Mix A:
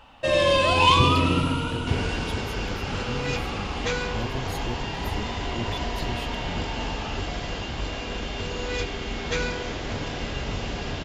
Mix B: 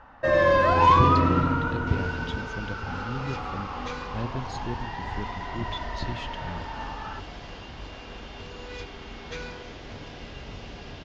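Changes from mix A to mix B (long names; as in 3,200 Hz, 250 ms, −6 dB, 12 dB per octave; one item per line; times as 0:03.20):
first sound: add high shelf with overshoot 2,200 Hz −8.5 dB, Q 3
second sound −10.0 dB
master: add Butterworth low-pass 6,400 Hz 36 dB per octave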